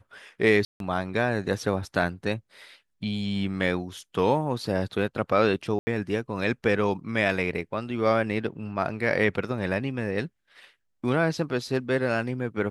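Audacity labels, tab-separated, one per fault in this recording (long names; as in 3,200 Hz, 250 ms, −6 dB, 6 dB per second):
0.650000	0.800000	drop-out 152 ms
5.790000	5.870000	drop-out 80 ms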